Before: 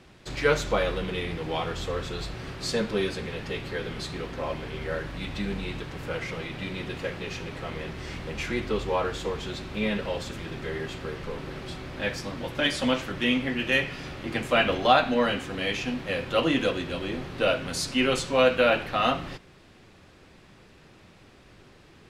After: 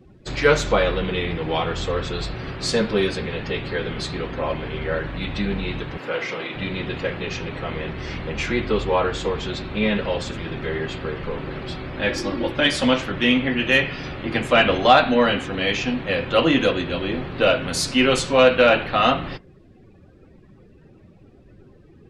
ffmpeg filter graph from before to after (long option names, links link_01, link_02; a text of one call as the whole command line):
ffmpeg -i in.wav -filter_complex "[0:a]asettb=1/sr,asplit=3[link_01][link_02][link_03];[link_01]atrim=end=5.984[link_04];[link_02]atrim=start=5.98:end=6.55,asetpts=PTS-STARTPTS,afade=type=in:duration=0.004:curve=qsin,afade=type=out:start_time=0.566:duration=0.004:curve=qsin,highpass=290,asplit=2[link_05][link_06];[link_06]adelay=34,volume=-8dB[link_07];[link_05][link_07]amix=inputs=2:normalize=0,atrim=end_sample=25137[link_08];[link_03]atrim=start=6.546[link_09];[link_04][link_08]acrossfade=duration=0.004:curve1=hsin:curve2=qsin[link_10];[link_10][link_09]acrossfade=duration=0.004:curve1=qsin:curve2=hsin,asettb=1/sr,asplit=3[link_11][link_12][link_13];[link_11]atrim=end=12.084[link_14];[link_12]atrim=start=12.08:end=12.52,asetpts=PTS-STARTPTS,afade=type=in:duration=0.004:curve=qsin,afade=type=out:start_time=0.436:duration=0.004:curve=qsin,equalizer=frequency=360:width=4.7:gain=12,aecho=1:1:3.6:0.46,atrim=end_sample=19404[link_15];[link_13]atrim=start=12.516[link_16];[link_14][link_15]acrossfade=duration=0.004:curve1=hsin:curve2=qsin[link_17];[link_17][link_16]acrossfade=duration=0.004:curve1=qsin:curve2=hsin,afftdn=noise_reduction=20:noise_floor=-50,acontrast=39,volume=1dB" out.wav